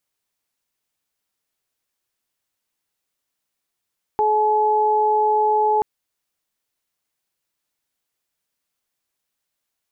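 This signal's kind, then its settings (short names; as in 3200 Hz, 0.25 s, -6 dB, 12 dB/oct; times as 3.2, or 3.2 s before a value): steady additive tone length 1.63 s, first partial 427 Hz, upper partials 4 dB, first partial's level -20 dB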